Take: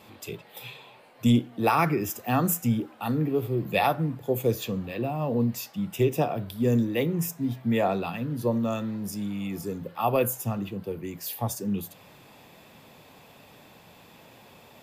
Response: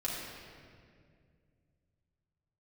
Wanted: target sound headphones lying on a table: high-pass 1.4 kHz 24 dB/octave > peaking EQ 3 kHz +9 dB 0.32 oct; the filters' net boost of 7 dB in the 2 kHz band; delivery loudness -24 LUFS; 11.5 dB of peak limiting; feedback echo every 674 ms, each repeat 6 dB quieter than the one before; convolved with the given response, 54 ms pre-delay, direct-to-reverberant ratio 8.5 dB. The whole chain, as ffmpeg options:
-filter_complex "[0:a]equalizer=f=2000:t=o:g=7,alimiter=limit=0.106:level=0:latency=1,aecho=1:1:674|1348|2022|2696|3370|4044:0.501|0.251|0.125|0.0626|0.0313|0.0157,asplit=2[s0][s1];[1:a]atrim=start_sample=2205,adelay=54[s2];[s1][s2]afir=irnorm=-1:irlink=0,volume=0.224[s3];[s0][s3]amix=inputs=2:normalize=0,highpass=f=1400:w=0.5412,highpass=f=1400:w=1.3066,equalizer=f=3000:t=o:w=0.32:g=9,volume=3.55"

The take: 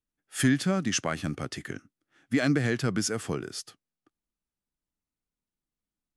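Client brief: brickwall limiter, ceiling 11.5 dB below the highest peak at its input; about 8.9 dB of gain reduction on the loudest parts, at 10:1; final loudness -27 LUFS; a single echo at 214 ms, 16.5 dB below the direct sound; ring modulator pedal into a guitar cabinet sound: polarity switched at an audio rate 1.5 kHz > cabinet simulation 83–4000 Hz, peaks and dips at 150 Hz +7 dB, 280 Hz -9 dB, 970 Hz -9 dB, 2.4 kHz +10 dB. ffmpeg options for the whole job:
-af "acompressor=threshold=0.0398:ratio=10,alimiter=level_in=2:limit=0.0631:level=0:latency=1,volume=0.501,aecho=1:1:214:0.15,aeval=exprs='val(0)*sgn(sin(2*PI*1500*n/s))':c=same,highpass=83,equalizer=f=150:t=q:w=4:g=7,equalizer=f=280:t=q:w=4:g=-9,equalizer=f=970:t=q:w=4:g=-9,equalizer=f=2400:t=q:w=4:g=10,lowpass=f=4000:w=0.5412,lowpass=f=4000:w=1.3066,volume=4.22"

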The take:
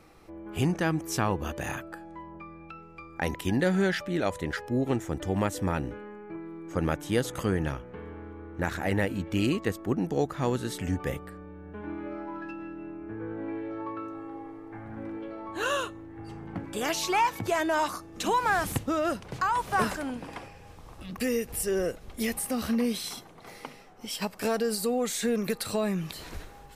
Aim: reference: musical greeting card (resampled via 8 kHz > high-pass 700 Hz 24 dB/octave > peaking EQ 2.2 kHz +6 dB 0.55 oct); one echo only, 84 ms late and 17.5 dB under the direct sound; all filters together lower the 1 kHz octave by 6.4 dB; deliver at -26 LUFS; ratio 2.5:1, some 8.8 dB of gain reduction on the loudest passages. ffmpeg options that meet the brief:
-af "equalizer=f=1000:t=o:g=-7.5,acompressor=threshold=0.0158:ratio=2.5,aecho=1:1:84:0.133,aresample=8000,aresample=44100,highpass=f=700:w=0.5412,highpass=f=700:w=1.3066,equalizer=f=2200:t=o:w=0.55:g=6,volume=7.5"

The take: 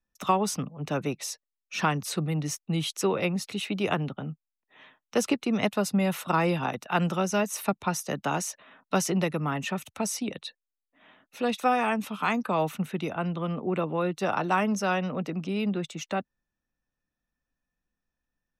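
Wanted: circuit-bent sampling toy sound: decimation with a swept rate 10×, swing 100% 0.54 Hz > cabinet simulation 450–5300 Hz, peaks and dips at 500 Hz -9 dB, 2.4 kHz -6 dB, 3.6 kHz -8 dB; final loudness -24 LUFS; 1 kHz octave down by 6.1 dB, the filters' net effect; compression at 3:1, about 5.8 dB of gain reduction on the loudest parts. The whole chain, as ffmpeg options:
-af "equalizer=f=1000:t=o:g=-7,acompressor=threshold=0.0398:ratio=3,acrusher=samples=10:mix=1:aa=0.000001:lfo=1:lforange=10:lforate=0.54,highpass=450,equalizer=f=500:t=q:w=4:g=-9,equalizer=f=2400:t=q:w=4:g=-6,equalizer=f=3600:t=q:w=4:g=-8,lowpass=f=5300:w=0.5412,lowpass=f=5300:w=1.3066,volume=5.96"

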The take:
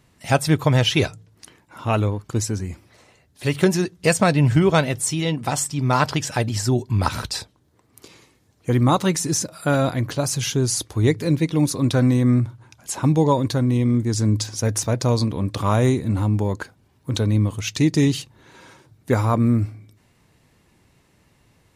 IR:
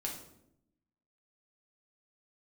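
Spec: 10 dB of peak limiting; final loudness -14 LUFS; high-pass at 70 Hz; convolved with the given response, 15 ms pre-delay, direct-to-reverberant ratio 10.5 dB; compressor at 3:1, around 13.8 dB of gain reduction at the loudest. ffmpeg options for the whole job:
-filter_complex "[0:a]highpass=70,acompressor=threshold=0.0251:ratio=3,alimiter=limit=0.0668:level=0:latency=1,asplit=2[s0][s1];[1:a]atrim=start_sample=2205,adelay=15[s2];[s1][s2]afir=irnorm=-1:irlink=0,volume=0.266[s3];[s0][s3]amix=inputs=2:normalize=0,volume=10"

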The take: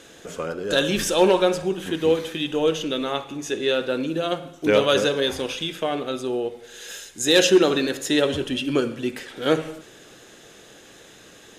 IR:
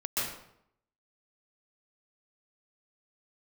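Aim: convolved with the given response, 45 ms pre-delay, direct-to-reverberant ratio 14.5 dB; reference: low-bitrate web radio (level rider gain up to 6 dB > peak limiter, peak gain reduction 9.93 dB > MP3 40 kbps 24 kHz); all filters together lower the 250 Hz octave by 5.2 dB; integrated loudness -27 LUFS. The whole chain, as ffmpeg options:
-filter_complex "[0:a]equalizer=f=250:t=o:g=-8,asplit=2[s0][s1];[1:a]atrim=start_sample=2205,adelay=45[s2];[s1][s2]afir=irnorm=-1:irlink=0,volume=0.0794[s3];[s0][s3]amix=inputs=2:normalize=0,dynaudnorm=m=2,alimiter=limit=0.133:level=0:latency=1,volume=1.26" -ar 24000 -c:a libmp3lame -b:a 40k

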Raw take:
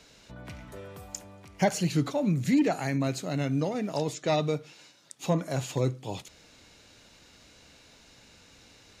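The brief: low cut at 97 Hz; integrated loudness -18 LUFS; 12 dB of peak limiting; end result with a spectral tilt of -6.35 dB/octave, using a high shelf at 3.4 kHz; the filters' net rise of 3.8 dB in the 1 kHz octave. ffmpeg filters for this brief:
-af "highpass=97,equalizer=f=1000:t=o:g=6,highshelf=f=3400:g=-6.5,volume=5.96,alimiter=limit=0.447:level=0:latency=1"

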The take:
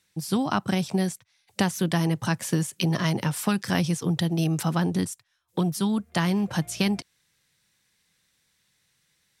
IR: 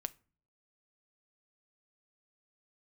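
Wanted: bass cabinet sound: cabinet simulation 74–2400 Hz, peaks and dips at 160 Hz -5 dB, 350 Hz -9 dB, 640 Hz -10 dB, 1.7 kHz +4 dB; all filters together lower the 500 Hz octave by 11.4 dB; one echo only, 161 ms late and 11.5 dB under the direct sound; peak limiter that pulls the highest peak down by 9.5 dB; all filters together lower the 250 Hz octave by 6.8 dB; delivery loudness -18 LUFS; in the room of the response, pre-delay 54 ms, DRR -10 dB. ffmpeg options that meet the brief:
-filter_complex "[0:a]equalizer=f=250:t=o:g=-5,equalizer=f=500:t=o:g=-5.5,alimiter=limit=0.126:level=0:latency=1,aecho=1:1:161:0.266,asplit=2[s0][s1];[1:a]atrim=start_sample=2205,adelay=54[s2];[s1][s2]afir=irnorm=-1:irlink=0,volume=3.76[s3];[s0][s3]amix=inputs=2:normalize=0,highpass=f=74:w=0.5412,highpass=f=74:w=1.3066,equalizer=f=160:t=q:w=4:g=-5,equalizer=f=350:t=q:w=4:g=-9,equalizer=f=640:t=q:w=4:g=-10,equalizer=f=1700:t=q:w=4:g=4,lowpass=f=2400:w=0.5412,lowpass=f=2400:w=1.3066,volume=1.88"

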